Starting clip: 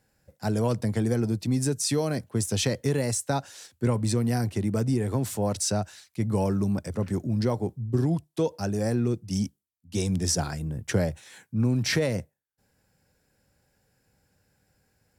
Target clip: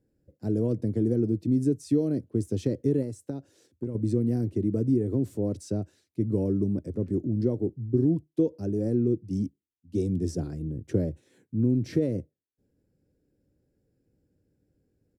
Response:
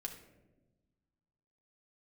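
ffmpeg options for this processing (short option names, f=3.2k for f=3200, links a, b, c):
-filter_complex "[0:a]firequalizer=gain_entry='entry(210,0);entry(300,9);entry(820,-17)':delay=0.05:min_phase=1,asettb=1/sr,asplit=3[a][b][c];[a]atrim=end=3.024[d];[b]atrim=start=3.02:end=3.95,asetpts=PTS-STARTPTS,afade=t=in:d=0.004:c=qsin,afade=t=out:st=0.926:d=0.004:c=qsin,acompressor=threshold=-30dB:ratio=3[e];[c]atrim=start=3.946[f];[d][e]acrossfade=d=0.004:c1=hsin:c2=qsin[g];[g][f]acrossfade=d=0.004:c1=qsin:c2=hsin,volume=-2dB"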